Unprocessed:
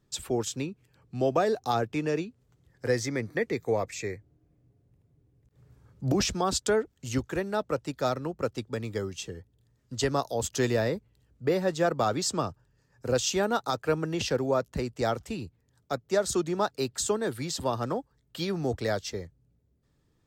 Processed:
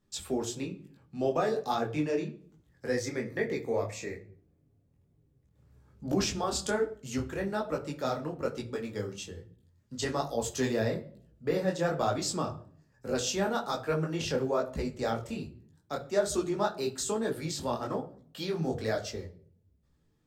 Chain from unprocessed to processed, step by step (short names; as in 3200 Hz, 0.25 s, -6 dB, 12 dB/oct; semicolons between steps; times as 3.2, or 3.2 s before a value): on a send at -7 dB: bell 6000 Hz -5 dB + reverb RT60 0.55 s, pre-delay 4 ms; on the sum: detuned doubles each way 40 cents